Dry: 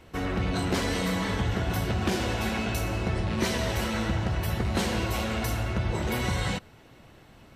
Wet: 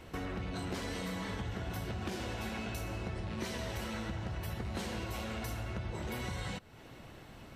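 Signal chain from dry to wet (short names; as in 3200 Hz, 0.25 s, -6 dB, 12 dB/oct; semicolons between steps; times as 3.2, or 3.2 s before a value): compressor 3:1, threshold -41 dBFS, peak gain reduction 14 dB; gain +1 dB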